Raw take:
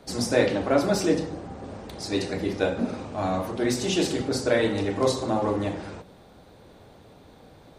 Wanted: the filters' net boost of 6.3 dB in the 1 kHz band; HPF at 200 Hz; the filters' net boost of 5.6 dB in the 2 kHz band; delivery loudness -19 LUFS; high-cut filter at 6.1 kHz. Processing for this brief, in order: high-pass 200 Hz; low-pass 6.1 kHz; peaking EQ 1 kHz +7.5 dB; peaking EQ 2 kHz +4.5 dB; trim +5 dB

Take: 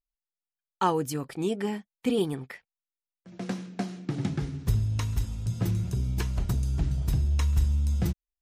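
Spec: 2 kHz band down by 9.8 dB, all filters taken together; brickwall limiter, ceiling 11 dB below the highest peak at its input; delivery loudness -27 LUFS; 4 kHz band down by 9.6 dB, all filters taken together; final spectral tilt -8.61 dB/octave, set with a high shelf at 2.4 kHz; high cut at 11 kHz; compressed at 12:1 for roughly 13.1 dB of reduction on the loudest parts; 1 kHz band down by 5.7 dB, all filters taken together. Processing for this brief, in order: low-pass 11 kHz; peaking EQ 1 kHz -4 dB; peaking EQ 2 kHz -7 dB; treble shelf 2.4 kHz -7.5 dB; peaking EQ 4 kHz -3 dB; compression 12:1, threshold -32 dBFS; trim +14.5 dB; peak limiter -18.5 dBFS

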